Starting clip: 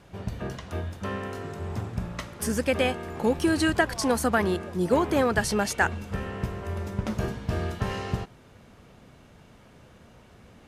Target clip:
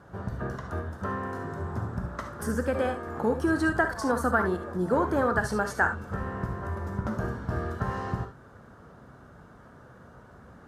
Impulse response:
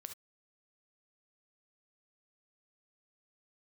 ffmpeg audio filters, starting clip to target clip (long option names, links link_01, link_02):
-filter_complex "[0:a]asplit=2[link_01][link_02];[link_02]acompressor=threshold=-32dB:ratio=6,volume=1dB[link_03];[link_01][link_03]amix=inputs=2:normalize=0,highpass=48,highshelf=frequency=1900:width_type=q:width=3:gain=-8[link_04];[1:a]atrim=start_sample=2205[link_05];[link_04][link_05]afir=irnorm=-1:irlink=0" -ar 48000 -c:a libopus -b:a 64k